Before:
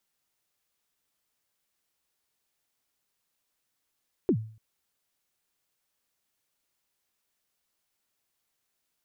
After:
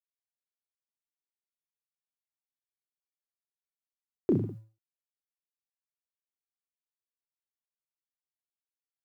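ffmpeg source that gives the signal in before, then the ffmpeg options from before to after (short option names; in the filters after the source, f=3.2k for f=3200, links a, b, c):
-f lavfi -i "aevalsrc='0.141*pow(10,-3*t/0.46)*sin(2*PI*(420*0.075/log(110/420)*(exp(log(110/420)*min(t,0.075)/0.075)-1)+110*max(t-0.075,0)))':d=0.29:s=44100"
-filter_complex "[0:a]highpass=f=61:w=0.5412,highpass=f=61:w=1.3066,aeval=exprs='sgn(val(0))*max(abs(val(0))-0.00126,0)':c=same,asplit=2[a][b];[b]aecho=0:1:30|64.5|104.2|149.8|202.3:0.631|0.398|0.251|0.158|0.1[c];[a][c]amix=inputs=2:normalize=0"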